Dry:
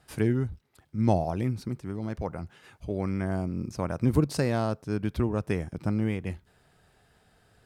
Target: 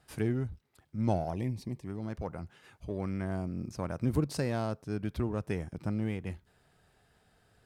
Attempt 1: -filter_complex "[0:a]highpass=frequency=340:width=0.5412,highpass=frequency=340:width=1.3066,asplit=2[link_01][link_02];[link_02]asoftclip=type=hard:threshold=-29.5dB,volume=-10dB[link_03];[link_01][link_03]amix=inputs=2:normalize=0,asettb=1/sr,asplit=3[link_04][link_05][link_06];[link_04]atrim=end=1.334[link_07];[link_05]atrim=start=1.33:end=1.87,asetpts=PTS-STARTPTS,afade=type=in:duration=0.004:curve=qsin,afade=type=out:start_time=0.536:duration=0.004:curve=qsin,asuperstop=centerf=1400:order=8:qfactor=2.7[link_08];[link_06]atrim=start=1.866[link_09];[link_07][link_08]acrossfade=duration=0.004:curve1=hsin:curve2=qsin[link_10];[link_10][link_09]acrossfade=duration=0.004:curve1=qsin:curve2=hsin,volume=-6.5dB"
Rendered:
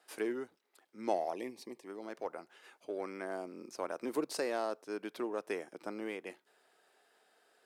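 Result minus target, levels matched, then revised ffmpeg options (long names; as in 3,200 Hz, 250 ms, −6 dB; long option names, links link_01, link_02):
250 Hz band −3.0 dB
-filter_complex "[0:a]asplit=2[link_01][link_02];[link_02]asoftclip=type=hard:threshold=-29.5dB,volume=-10dB[link_03];[link_01][link_03]amix=inputs=2:normalize=0,asettb=1/sr,asplit=3[link_04][link_05][link_06];[link_04]atrim=end=1.334[link_07];[link_05]atrim=start=1.33:end=1.87,asetpts=PTS-STARTPTS,afade=type=in:duration=0.004:curve=qsin,afade=type=out:start_time=0.536:duration=0.004:curve=qsin,asuperstop=centerf=1400:order=8:qfactor=2.7[link_08];[link_06]atrim=start=1.866[link_09];[link_07][link_08]acrossfade=duration=0.004:curve1=hsin:curve2=qsin[link_10];[link_10][link_09]acrossfade=duration=0.004:curve1=qsin:curve2=hsin,volume=-6.5dB"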